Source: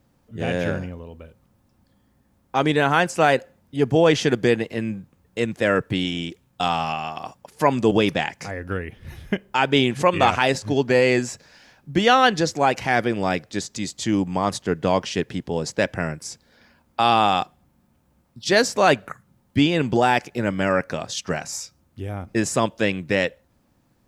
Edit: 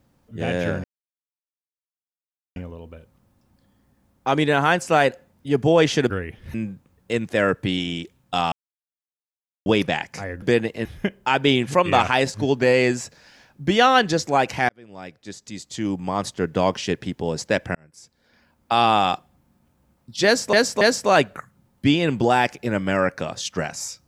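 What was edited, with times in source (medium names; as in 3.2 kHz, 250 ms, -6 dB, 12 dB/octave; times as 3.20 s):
0.84 s: insert silence 1.72 s
4.38–4.81 s: swap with 8.69–9.13 s
6.79–7.93 s: mute
12.97–14.86 s: fade in
16.03–17.07 s: fade in
18.53–18.81 s: loop, 3 plays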